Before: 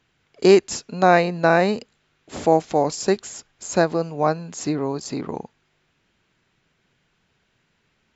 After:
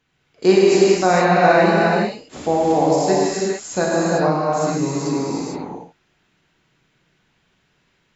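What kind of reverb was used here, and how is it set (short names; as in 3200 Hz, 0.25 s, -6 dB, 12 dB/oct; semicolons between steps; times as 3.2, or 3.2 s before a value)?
non-linear reverb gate 0.48 s flat, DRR -7 dB; gain -4 dB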